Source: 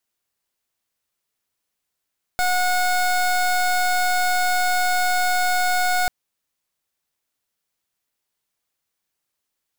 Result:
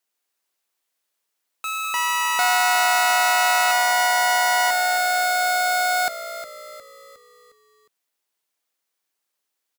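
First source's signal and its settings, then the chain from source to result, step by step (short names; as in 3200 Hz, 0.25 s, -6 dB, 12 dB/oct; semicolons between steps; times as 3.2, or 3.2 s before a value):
pulse 728 Hz, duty 24% -19.5 dBFS 3.69 s
HPF 290 Hz 12 dB/oct; frequency-shifting echo 0.359 s, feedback 47%, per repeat -60 Hz, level -12.5 dB; echoes that change speed 0.15 s, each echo +5 st, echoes 2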